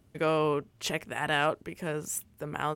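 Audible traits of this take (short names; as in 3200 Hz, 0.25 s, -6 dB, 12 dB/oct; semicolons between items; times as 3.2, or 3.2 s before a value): noise floor -63 dBFS; spectral tilt -4.0 dB/oct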